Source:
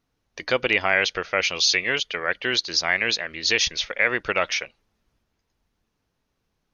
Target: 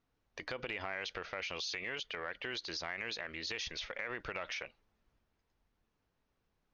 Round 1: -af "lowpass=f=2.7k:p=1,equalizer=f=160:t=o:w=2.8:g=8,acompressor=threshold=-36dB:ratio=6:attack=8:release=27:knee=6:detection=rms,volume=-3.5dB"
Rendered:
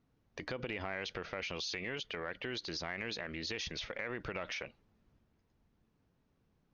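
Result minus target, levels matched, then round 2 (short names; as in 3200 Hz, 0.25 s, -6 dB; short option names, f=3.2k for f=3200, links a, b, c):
125 Hz band +7.0 dB
-af "lowpass=f=2.7k:p=1,equalizer=f=160:t=o:w=2.8:g=-3,acompressor=threshold=-36dB:ratio=6:attack=8:release=27:knee=6:detection=rms,volume=-3.5dB"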